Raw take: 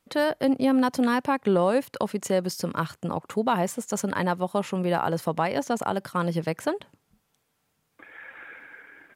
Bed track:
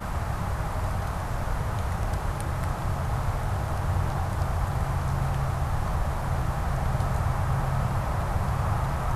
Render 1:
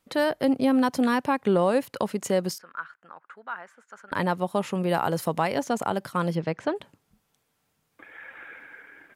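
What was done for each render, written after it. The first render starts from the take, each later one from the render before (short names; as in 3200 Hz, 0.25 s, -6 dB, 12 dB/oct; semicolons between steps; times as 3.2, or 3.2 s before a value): 2.58–4.12 band-pass 1500 Hz, Q 4.8; 4.89–5.55 high shelf 5200 Hz +6.5 dB; 6.35–6.76 air absorption 130 m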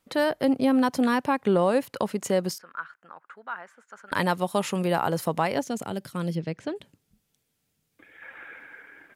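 4.06–4.88 high shelf 2500 Hz +9 dB; 5.61–8.22 bell 1000 Hz -11.5 dB 1.8 oct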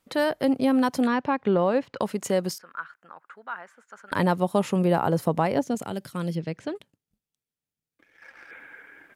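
1.07–2.01 air absorption 150 m; 4.14–5.75 tilt shelf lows +5 dB; 6.75–8.51 power-law curve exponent 1.4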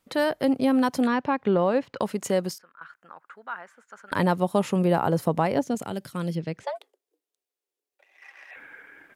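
2.41–2.81 fade out, to -20 dB; 6.63–8.56 frequency shift +270 Hz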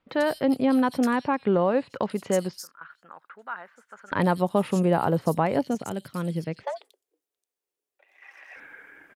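bands offset in time lows, highs 90 ms, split 3900 Hz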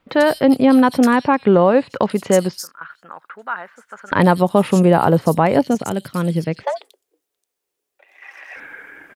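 gain +9.5 dB; limiter -2 dBFS, peak gain reduction 2 dB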